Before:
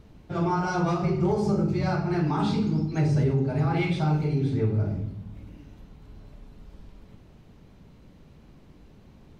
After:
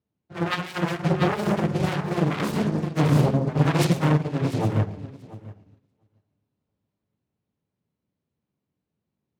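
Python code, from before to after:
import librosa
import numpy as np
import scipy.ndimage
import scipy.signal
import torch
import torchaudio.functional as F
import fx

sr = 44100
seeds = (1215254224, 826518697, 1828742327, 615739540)

y = fx.self_delay(x, sr, depth_ms=0.87)
y = scipy.signal.sosfilt(scipy.signal.butter(4, 86.0, 'highpass', fs=sr, output='sos'), y)
y = fx.echo_feedback(y, sr, ms=689, feedback_pct=25, wet_db=-7.5)
y = fx.upward_expand(y, sr, threshold_db=-45.0, expansion=2.5)
y = F.gain(torch.from_numpy(y), 7.0).numpy()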